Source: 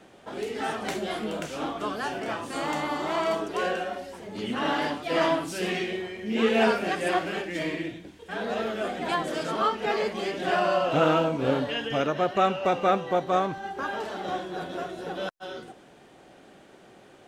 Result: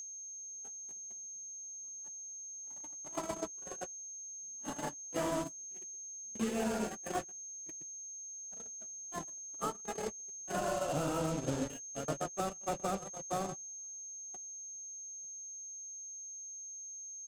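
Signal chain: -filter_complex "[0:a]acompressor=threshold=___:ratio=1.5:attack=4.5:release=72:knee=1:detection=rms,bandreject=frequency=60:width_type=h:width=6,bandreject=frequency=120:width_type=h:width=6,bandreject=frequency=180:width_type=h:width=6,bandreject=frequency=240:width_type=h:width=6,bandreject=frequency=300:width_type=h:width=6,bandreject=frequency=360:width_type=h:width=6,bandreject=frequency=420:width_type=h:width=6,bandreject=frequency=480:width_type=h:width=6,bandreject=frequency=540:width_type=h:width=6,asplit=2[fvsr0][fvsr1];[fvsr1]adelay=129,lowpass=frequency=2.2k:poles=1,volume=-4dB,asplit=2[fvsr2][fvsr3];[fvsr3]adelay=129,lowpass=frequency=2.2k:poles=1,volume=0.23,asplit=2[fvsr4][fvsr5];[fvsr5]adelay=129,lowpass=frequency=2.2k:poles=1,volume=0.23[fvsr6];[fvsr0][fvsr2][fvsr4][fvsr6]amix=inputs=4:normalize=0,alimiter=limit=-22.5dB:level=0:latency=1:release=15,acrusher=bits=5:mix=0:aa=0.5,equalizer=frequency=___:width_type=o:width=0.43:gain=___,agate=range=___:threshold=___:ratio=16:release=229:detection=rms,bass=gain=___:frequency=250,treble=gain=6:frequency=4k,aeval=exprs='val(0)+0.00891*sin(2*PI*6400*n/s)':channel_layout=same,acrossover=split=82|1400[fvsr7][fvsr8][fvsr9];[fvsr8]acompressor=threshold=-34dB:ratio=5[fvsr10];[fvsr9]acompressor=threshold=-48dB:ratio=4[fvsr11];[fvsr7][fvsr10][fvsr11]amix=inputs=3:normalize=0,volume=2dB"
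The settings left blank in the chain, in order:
-41dB, 7.5k, 8, -52dB, -28dB, 7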